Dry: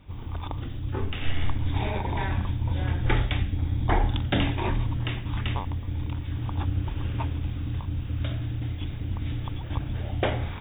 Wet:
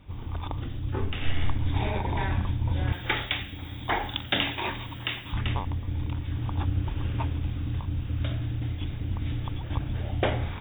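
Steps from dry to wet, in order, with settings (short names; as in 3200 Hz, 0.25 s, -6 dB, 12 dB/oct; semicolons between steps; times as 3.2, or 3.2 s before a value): 2.92–5.33 tilt +3.5 dB/oct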